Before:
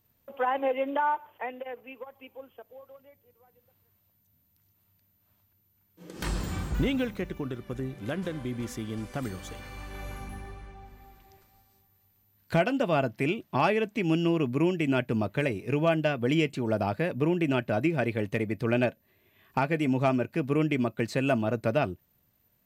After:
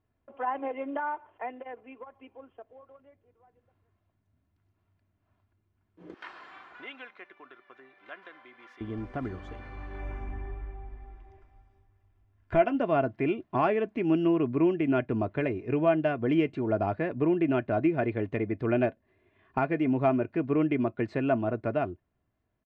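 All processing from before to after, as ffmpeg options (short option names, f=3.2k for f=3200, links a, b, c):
-filter_complex "[0:a]asettb=1/sr,asplit=3[a][b][c];[a]atrim=end=6.144[d];[b]atrim=start=6.14:end=8.81,asetpts=PTS-STARTPTS,afade=t=in:d=0.004:c=qsin,afade=t=out:st=2.666:d=0.004:c=qsin,highpass=1.2k,equalizer=f=7.6k:w=1.4:g=-10[e];[c]atrim=start=8.806[f];[d][e]acrossfade=d=0.004:c1=hsin:c2=qsin[g];[g][f]acrossfade=d=0.004:c1=qsin:c2=hsin,asettb=1/sr,asplit=3[h][i][j];[h]atrim=end=9.994[k];[i]atrim=start=9.99:end=12.75,asetpts=PTS-STARTPTS,afade=t=in:d=0.004:c=qsin,afade=t=out:st=2.756:d=0.004:c=qsin,asubboost=boost=4.5:cutoff=110,asuperstop=centerf=4200:order=4:qfactor=6.2,aecho=1:1:3:0.31,atrim=end_sample=121716[l];[j]atrim=start=12.746[m];[k][l]acrossfade=d=0.004:c1=hsin:c2=qsin[n];[n][m]acrossfade=d=0.004:c1=qsin:c2=hsin,aecho=1:1:2.9:0.41,dynaudnorm=f=180:g=13:m=3.5dB,lowpass=1.8k,volume=-4dB"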